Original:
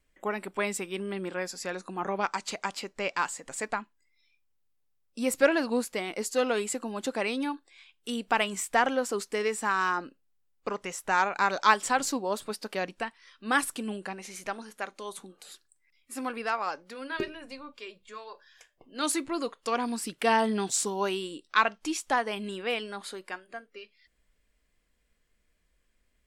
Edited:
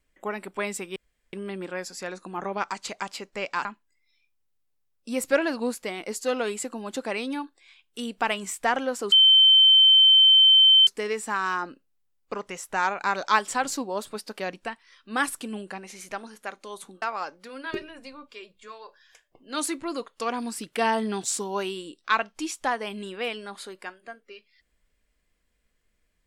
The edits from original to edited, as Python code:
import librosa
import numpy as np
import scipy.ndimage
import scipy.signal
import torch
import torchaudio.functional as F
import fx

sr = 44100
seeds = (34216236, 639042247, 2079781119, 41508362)

y = fx.edit(x, sr, fx.insert_room_tone(at_s=0.96, length_s=0.37),
    fx.cut(start_s=3.28, length_s=0.47),
    fx.insert_tone(at_s=9.22, length_s=1.75, hz=3090.0, db=-12.0),
    fx.cut(start_s=15.37, length_s=1.11), tone=tone)